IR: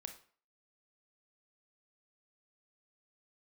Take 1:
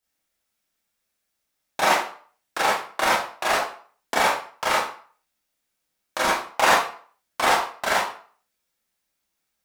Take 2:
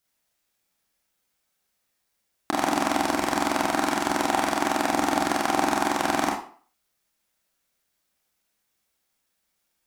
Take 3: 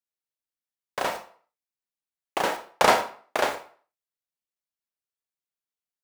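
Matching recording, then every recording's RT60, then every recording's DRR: 3; 0.45, 0.45, 0.45 seconds; −7.0, −2.0, 6.0 decibels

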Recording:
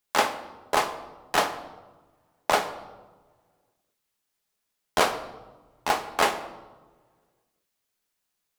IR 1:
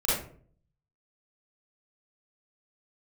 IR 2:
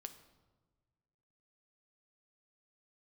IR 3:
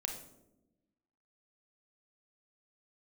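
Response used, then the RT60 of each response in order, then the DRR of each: 2; 0.50, 1.4, 0.95 seconds; −9.5, 7.5, 3.0 decibels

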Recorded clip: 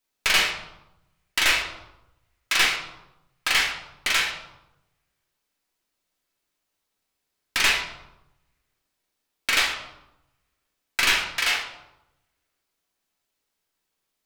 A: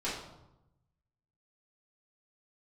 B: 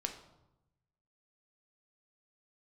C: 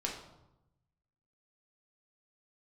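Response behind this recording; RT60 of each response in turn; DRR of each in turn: C; 0.90, 0.90, 0.90 seconds; −11.0, 4.0, −2.0 decibels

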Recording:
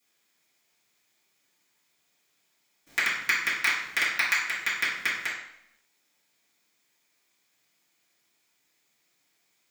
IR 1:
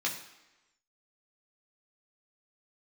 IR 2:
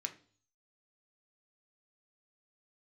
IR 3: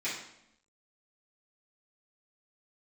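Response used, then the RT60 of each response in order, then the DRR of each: 3; 1.0, 0.45, 0.80 seconds; −3.0, 5.0, −12.0 decibels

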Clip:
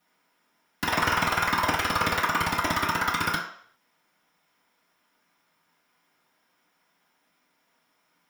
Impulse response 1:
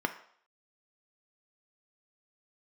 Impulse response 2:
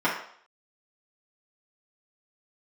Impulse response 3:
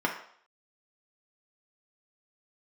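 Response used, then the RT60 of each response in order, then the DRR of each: 2; 0.60, 0.60, 0.60 seconds; 5.5, −9.0, −1.5 decibels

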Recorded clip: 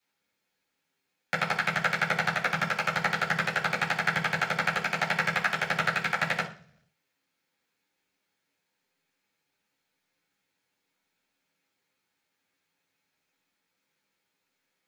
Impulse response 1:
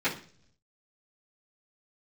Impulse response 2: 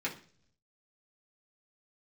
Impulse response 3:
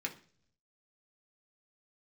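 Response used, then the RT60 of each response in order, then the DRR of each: 1; 0.50 s, non-exponential decay, non-exponential decay; −14.5, −5.0, 0.5 decibels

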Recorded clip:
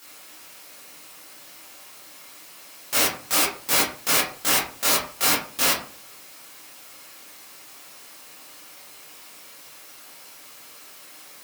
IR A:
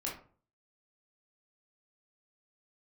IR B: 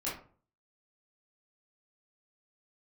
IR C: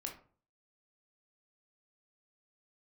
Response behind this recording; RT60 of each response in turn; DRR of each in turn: B; 0.45, 0.45, 0.45 seconds; −4.0, −8.5, 1.0 decibels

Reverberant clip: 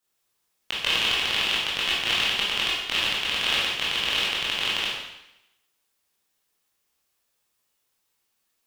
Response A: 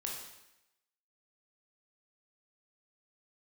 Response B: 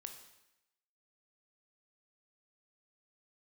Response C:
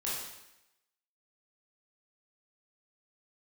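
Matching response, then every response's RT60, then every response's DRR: C; 0.90, 0.90, 0.90 seconds; −2.0, 5.0, −7.5 decibels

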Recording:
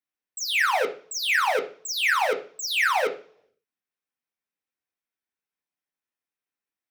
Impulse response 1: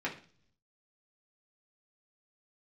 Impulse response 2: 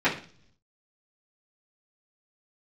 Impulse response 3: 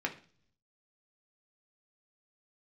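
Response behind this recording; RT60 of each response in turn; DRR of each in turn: 3; 0.45, 0.45, 0.45 seconds; −4.5, −12.0, 1.5 decibels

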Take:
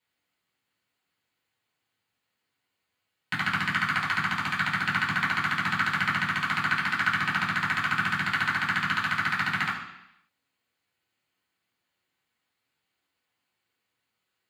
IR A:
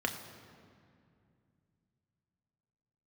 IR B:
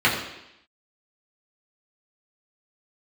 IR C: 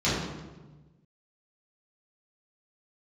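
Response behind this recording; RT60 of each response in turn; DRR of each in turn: B; 2.4, 0.85, 1.2 seconds; 3.5, −7.0, −11.0 decibels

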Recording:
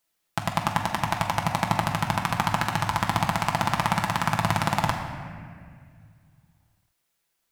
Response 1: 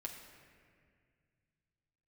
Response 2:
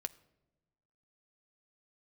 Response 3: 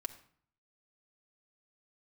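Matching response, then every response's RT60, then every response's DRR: 1; 2.0 s, non-exponential decay, non-exponential decay; 0.0, 11.5, 4.0 decibels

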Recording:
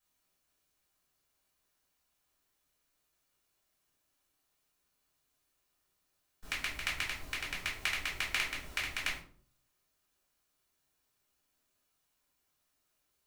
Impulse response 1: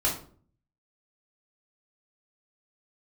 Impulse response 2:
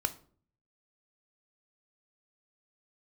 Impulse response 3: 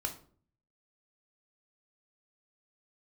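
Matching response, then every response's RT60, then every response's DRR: 1; 0.50, 0.50, 0.50 seconds; −4.5, 9.5, 3.5 decibels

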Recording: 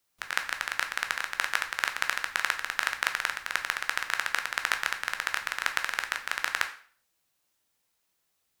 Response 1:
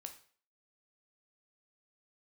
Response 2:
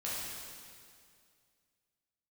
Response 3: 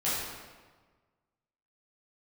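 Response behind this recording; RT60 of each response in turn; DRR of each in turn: 1; 0.45, 2.2, 1.4 seconds; 5.5, −8.0, −10.5 decibels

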